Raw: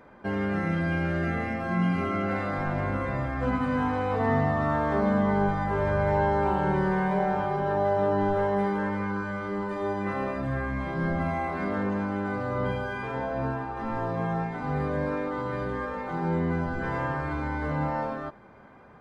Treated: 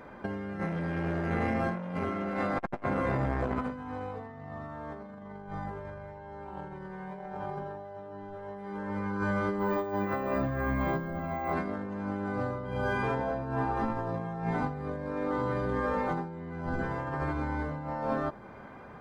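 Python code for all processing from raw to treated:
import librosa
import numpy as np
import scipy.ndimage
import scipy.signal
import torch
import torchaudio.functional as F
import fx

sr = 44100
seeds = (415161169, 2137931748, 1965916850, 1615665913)

y = fx.chain(x, sr, fx.hum_notches(base_hz=50, count=3),
    fx.transformer_sat(knee_hz=650.0), at=(0.6, 3.72))
y = fx.chain(y, sr, fx.bass_treble(bass_db=-3, treble_db=-5),
    fx.resample_bad(factor=2, down='filtered', up='hold'), at=(9.59, 11.53))
y = fx.over_compress(y, sr, threshold_db=-32.0, ratio=-0.5)
y = fx.dynamic_eq(y, sr, hz=2400.0, q=0.76, threshold_db=-47.0, ratio=4.0, max_db=-4)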